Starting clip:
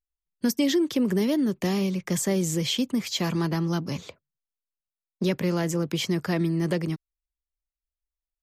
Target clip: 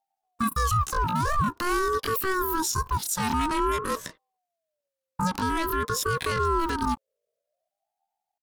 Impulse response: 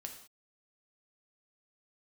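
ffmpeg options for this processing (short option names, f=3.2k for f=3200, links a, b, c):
-af "asetrate=85689,aresample=44100,atempo=0.514651,alimiter=limit=-24dB:level=0:latency=1:release=168,aeval=exprs='val(0)*sin(2*PI*660*n/s+660*0.2/0.49*sin(2*PI*0.49*n/s))':c=same,volume=9dB"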